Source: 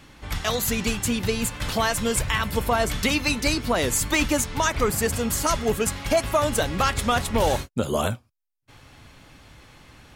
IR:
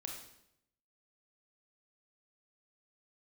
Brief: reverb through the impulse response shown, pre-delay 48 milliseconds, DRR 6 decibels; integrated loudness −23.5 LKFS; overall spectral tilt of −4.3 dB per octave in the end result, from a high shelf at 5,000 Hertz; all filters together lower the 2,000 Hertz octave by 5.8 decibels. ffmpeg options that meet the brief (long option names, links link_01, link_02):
-filter_complex "[0:a]equalizer=frequency=2000:width_type=o:gain=-7,highshelf=frequency=5000:gain=-3.5,asplit=2[link_01][link_02];[1:a]atrim=start_sample=2205,adelay=48[link_03];[link_02][link_03]afir=irnorm=-1:irlink=0,volume=-4dB[link_04];[link_01][link_04]amix=inputs=2:normalize=0,volume=1dB"